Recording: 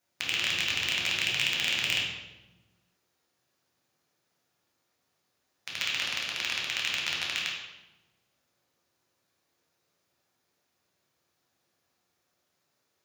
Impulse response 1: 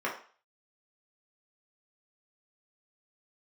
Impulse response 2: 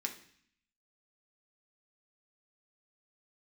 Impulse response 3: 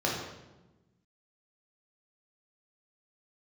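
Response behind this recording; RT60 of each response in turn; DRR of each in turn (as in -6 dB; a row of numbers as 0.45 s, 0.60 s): 3; 0.40 s, 0.55 s, 1.1 s; -4.5 dB, 1.5 dB, -4.0 dB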